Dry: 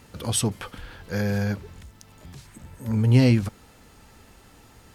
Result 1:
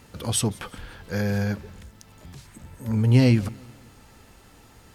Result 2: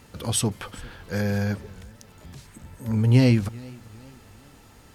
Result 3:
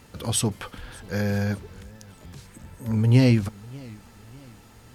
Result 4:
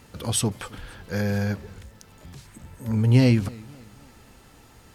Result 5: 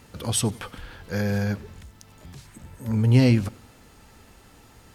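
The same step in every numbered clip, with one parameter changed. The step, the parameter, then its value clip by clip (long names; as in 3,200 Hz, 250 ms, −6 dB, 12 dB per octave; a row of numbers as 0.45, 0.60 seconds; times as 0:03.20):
feedback echo with a swinging delay time, delay time: 179, 397, 592, 269, 93 milliseconds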